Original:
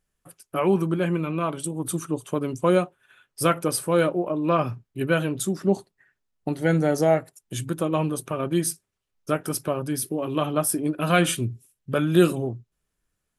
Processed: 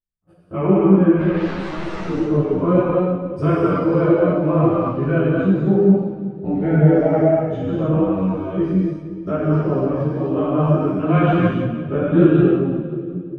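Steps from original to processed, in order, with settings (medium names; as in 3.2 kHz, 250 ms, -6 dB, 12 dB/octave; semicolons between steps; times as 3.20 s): every event in the spectrogram widened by 60 ms; gate -41 dBFS, range -24 dB; bass shelf 290 Hz +10.5 dB; 1.19–2.00 s: integer overflow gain 21.5 dB; 4.33–4.88 s: added noise white -39 dBFS; 7.94–8.58 s: robot voice 94.1 Hz; low-pass that closes with the level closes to 2.4 kHz, closed at -17 dBFS; tape spacing loss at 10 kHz 30 dB; two-band feedback delay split 480 Hz, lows 358 ms, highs 181 ms, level -11 dB; gated-style reverb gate 330 ms flat, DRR -5.5 dB; three-phase chorus; trim -2 dB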